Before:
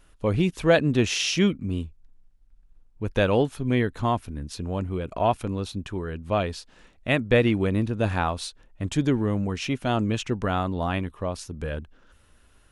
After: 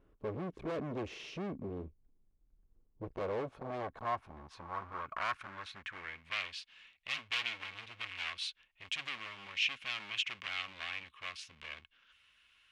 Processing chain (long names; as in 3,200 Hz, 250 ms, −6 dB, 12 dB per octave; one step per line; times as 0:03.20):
spectral tilt −3 dB per octave
wave folding −11.5 dBFS
0:07.13–0:08.32: notch comb filter 200 Hz
hard clipping −26.5 dBFS, distortion −5 dB
band-pass filter sweep 410 Hz → 2,800 Hz, 0:02.97–0:06.57
guitar amp tone stack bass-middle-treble 5-5-5
hollow resonant body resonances 1,100/2,200 Hz, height 8 dB
level +16.5 dB